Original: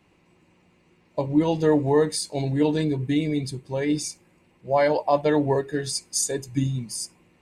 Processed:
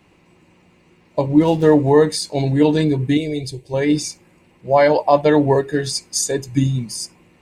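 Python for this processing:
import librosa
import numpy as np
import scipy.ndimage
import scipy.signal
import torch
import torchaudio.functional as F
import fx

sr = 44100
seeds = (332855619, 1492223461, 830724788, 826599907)

y = fx.median_filter(x, sr, points=9, at=(1.27, 1.84))
y = fx.fixed_phaser(y, sr, hz=530.0, stages=4, at=(3.17, 3.74))
y = fx.dynamic_eq(y, sr, hz=9700.0, q=1.2, threshold_db=-45.0, ratio=4.0, max_db=-6)
y = y * librosa.db_to_amplitude(7.0)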